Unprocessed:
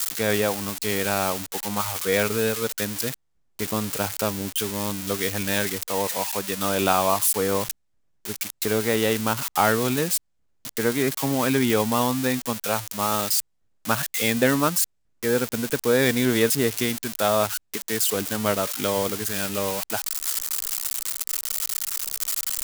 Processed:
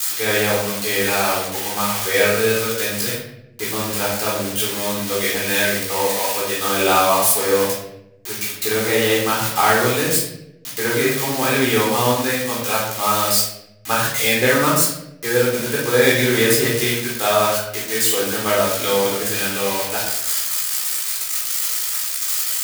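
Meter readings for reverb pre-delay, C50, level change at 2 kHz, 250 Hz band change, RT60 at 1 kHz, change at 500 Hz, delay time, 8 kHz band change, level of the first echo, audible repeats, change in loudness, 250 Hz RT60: 16 ms, 2.0 dB, +8.0 dB, +1.5 dB, 0.70 s, +5.5 dB, none, +5.5 dB, none, none, +5.5 dB, 1.2 s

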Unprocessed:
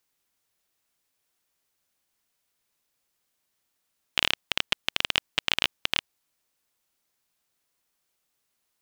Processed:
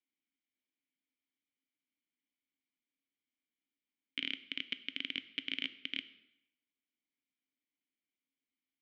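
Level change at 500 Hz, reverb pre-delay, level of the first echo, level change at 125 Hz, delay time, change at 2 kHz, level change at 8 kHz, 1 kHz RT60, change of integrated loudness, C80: -19.0 dB, 3 ms, none, -18.5 dB, none, -12.0 dB, under -30 dB, 0.90 s, -12.5 dB, 18.0 dB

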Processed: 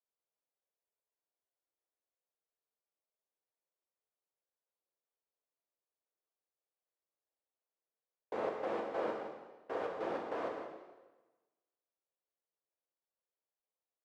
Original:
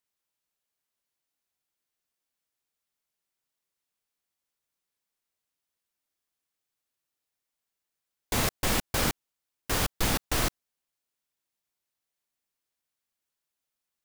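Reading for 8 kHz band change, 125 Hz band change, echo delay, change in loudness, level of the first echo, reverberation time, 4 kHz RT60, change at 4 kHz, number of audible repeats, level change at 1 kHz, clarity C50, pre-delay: under -35 dB, -27.0 dB, 0.164 s, -11.5 dB, -10.0 dB, 1.2 s, 1.1 s, -25.5 dB, 1, -6.0 dB, 3.0 dB, 4 ms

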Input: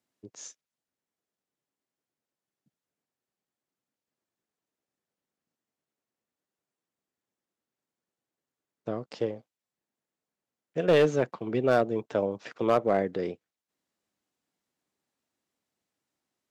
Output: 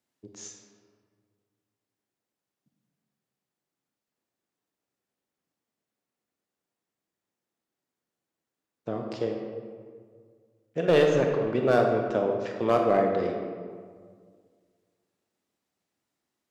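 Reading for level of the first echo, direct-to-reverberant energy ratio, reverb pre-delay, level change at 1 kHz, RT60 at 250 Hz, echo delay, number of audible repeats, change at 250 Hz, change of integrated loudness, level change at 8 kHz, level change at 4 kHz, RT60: none, 2.0 dB, 25 ms, +3.0 dB, 2.2 s, none, none, +2.0 dB, +2.0 dB, n/a, +1.5 dB, 1.9 s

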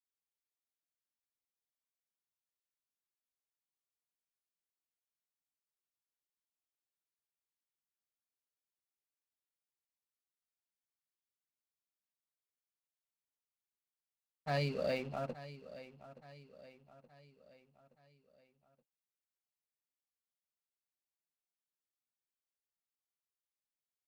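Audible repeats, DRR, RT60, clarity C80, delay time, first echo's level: 4, none, none, none, 0.873 s, -15.5 dB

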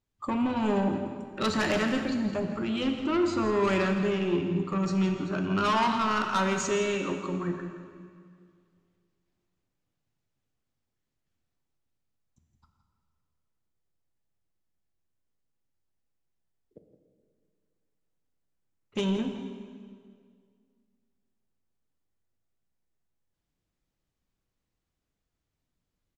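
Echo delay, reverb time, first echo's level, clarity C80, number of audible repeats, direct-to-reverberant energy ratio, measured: 0.167 s, 2.1 s, -12.0 dB, 6.0 dB, 1, 4.5 dB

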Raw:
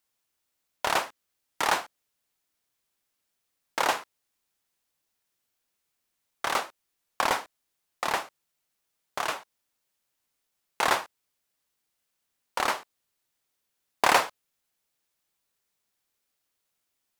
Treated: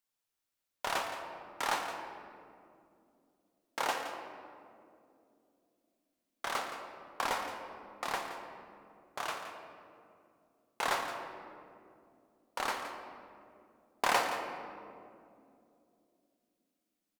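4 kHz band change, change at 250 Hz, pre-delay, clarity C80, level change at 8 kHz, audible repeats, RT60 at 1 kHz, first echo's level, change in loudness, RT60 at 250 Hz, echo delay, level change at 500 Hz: -7.0 dB, -5.5 dB, 4 ms, 5.5 dB, -7.5 dB, 1, 2.1 s, -11.5 dB, -8.5 dB, 4.4 s, 0.169 s, -6.0 dB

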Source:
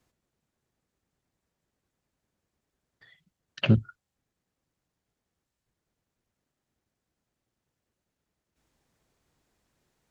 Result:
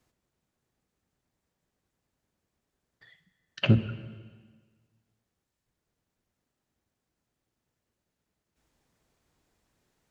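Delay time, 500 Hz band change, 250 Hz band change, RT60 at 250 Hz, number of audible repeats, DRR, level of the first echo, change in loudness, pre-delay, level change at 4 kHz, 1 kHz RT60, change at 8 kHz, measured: none, 0.0 dB, -1.0 dB, 1.6 s, none, 10.5 dB, none, -1.0 dB, 5 ms, 0.0 dB, 1.5 s, n/a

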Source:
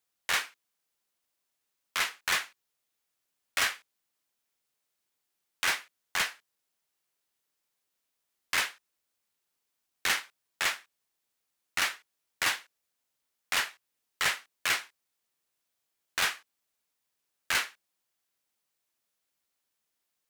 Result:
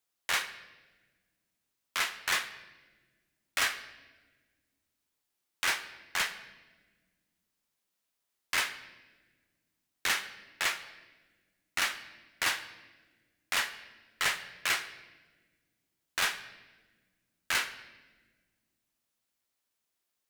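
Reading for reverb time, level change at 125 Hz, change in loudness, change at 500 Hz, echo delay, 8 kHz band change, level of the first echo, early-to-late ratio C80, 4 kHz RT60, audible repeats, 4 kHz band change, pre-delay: 1.4 s, -1.0 dB, -1.5 dB, -1.0 dB, none, -1.5 dB, none, 14.5 dB, 1.1 s, none, -1.0 dB, 3 ms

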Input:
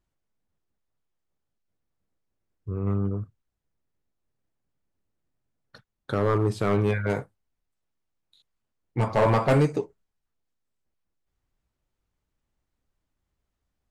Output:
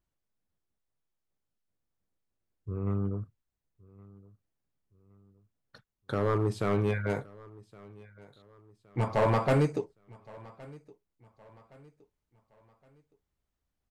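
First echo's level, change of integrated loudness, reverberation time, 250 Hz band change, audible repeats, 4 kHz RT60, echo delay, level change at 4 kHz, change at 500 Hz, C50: -22.5 dB, -4.5 dB, none, -4.5 dB, 2, none, 1.117 s, -4.5 dB, -4.5 dB, none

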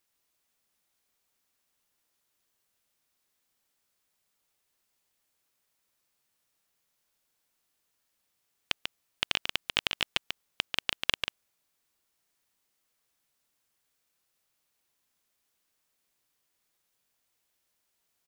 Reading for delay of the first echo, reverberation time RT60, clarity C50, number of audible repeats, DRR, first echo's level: 0.142 s, none, none, 1, none, -5.5 dB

